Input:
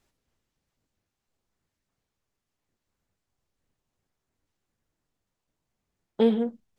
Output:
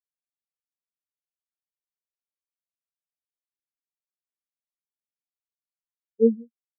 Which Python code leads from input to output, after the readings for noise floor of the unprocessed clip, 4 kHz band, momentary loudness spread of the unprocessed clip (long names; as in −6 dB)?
−85 dBFS, below −35 dB, 4 LU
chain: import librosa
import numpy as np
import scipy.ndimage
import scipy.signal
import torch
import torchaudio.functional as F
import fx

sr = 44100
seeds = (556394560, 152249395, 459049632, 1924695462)

y = fx.spectral_expand(x, sr, expansion=4.0)
y = y * 10.0 ** (4.0 / 20.0)